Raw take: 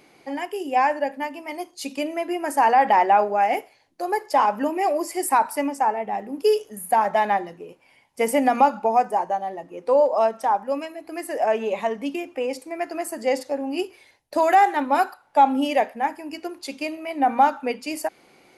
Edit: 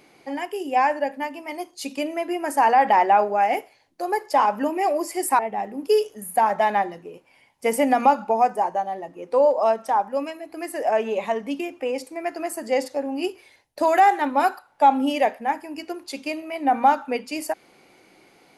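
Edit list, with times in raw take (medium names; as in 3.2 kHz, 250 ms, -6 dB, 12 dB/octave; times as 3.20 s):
5.39–5.94 s: delete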